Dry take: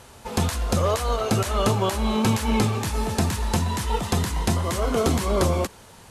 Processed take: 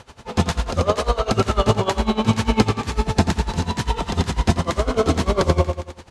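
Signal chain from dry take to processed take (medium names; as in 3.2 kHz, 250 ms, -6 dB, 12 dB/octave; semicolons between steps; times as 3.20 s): low-pass 5.8 kHz 12 dB/octave; feedback delay 86 ms, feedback 52%, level -7 dB; logarithmic tremolo 10 Hz, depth 19 dB; trim +7.5 dB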